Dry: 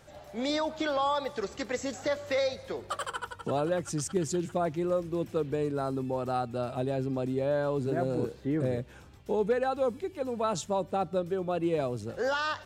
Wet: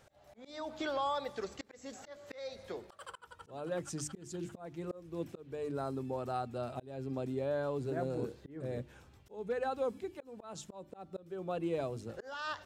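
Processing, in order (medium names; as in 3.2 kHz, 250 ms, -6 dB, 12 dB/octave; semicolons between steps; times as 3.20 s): hum notches 50/100/150/200/250/300/350 Hz; slow attack 320 ms; trim -6 dB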